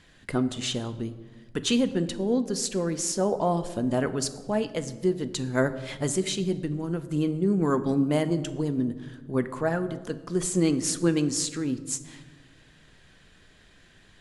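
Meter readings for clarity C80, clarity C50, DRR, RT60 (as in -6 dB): 15.0 dB, 14.0 dB, 10.0 dB, 1.4 s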